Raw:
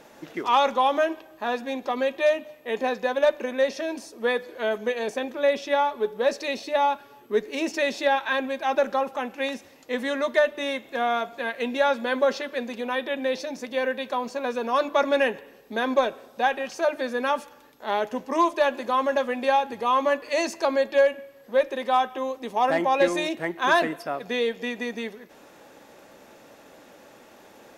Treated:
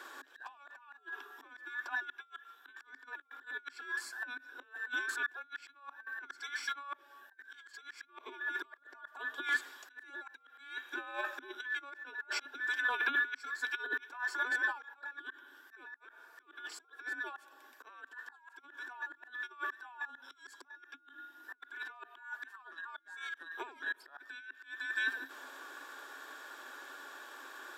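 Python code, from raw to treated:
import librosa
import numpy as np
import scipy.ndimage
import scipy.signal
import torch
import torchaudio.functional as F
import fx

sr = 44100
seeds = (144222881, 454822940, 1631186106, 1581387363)

y = fx.band_invert(x, sr, width_hz=2000)
y = fx.dynamic_eq(y, sr, hz=1800.0, q=1.4, threshold_db=-35.0, ratio=4.0, max_db=5)
y = fx.over_compress(y, sr, threshold_db=-28.0, ratio=-0.5)
y = fx.auto_swell(y, sr, attack_ms=557.0)
y = scipy.signal.sosfilt(scipy.signal.cheby1(6, 3, 260.0, 'highpass', fs=sr, output='sos'), y)
y = fx.notch(y, sr, hz=1300.0, q=7.3)
y = y * librosa.db_to_amplitude(-3.5)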